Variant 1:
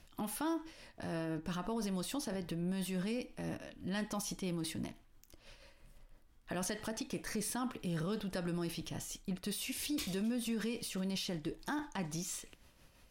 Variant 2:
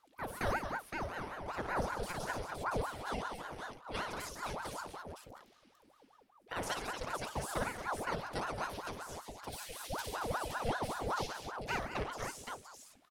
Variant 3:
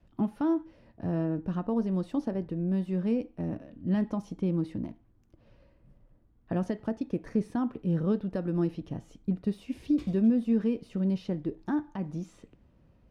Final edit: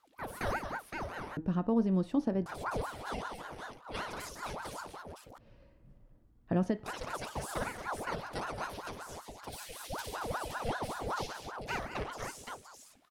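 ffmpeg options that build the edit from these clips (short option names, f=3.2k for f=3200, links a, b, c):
-filter_complex "[2:a]asplit=2[a][b];[1:a]asplit=3[c][d][e];[c]atrim=end=1.372[f];[a]atrim=start=1.368:end=2.462[g];[d]atrim=start=2.458:end=5.382[h];[b]atrim=start=5.378:end=6.862[i];[e]atrim=start=6.858[j];[f][g]acrossfade=d=0.004:c1=hsin:c2=hsin[k];[k][h]acrossfade=d=0.004:c1=hsin:c2=hsin[l];[l][i]acrossfade=d=0.004:c1=hsin:c2=hsin[m];[m][j]acrossfade=d=0.004:c1=hsin:c2=hsin"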